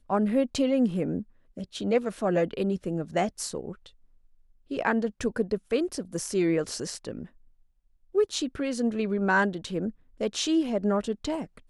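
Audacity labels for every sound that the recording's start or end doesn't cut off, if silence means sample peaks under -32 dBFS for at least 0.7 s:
4.710000	7.230000	sound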